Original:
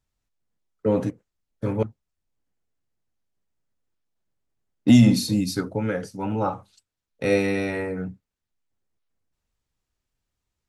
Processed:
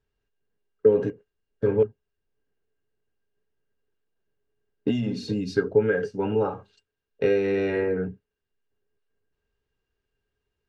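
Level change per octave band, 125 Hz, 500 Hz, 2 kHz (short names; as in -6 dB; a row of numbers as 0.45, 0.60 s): -8.0, +4.5, -1.0 dB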